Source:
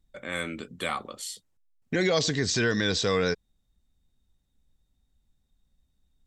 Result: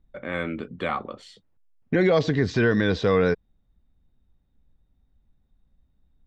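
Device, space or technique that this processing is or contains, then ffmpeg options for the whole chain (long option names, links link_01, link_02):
phone in a pocket: -af "lowpass=3200,highshelf=frequency=2100:gain=-10,volume=6dB"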